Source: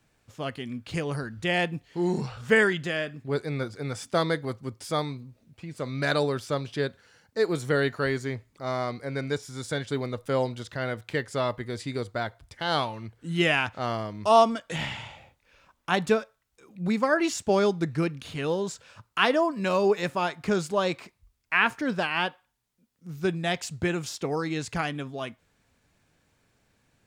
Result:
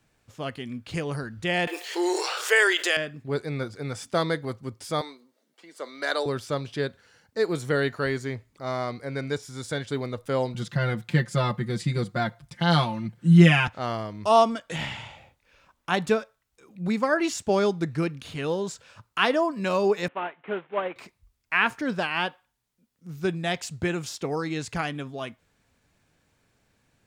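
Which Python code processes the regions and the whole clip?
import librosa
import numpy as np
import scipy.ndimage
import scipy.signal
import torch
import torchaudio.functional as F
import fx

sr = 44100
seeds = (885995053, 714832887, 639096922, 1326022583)

y = fx.chain(x, sr, fx.brickwall_highpass(low_hz=320.0),
    fx.tilt_eq(slope=2.5),
    fx.env_flatten(amount_pct=50), at=(1.67, 2.97))
y = fx.chain(y, sr, fx.bessel_highpass(hz=460.0, order=6),
    fx.notch(hz=2500.0, q=6.1), at=(5.01, 6.26))
y = fx.chain(y, sr, fx.highpass(hz=130.0, slope=12),
    fx.low_shelf_res(hz=270.0, db=9.5, q=1.5),
    fx.comb(ms=5.7, depth=0.94), at=(10.54, 13.68))
y = fx.chain(y, sr, fx.cvsd(bps=16000),
    fx.highpass(hz=340.0, slope=12),
    fx.upward_expand(threshold_db=-37.0, expansion=1.5), at=(20.08, 20.96))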